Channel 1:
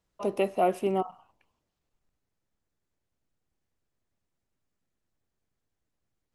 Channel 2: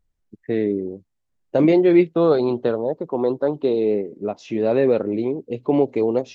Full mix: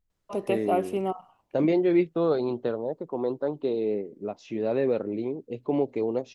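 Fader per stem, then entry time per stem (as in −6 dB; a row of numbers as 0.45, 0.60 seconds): −1.0, −7.5 decibels; 0.10, 0.00 seconds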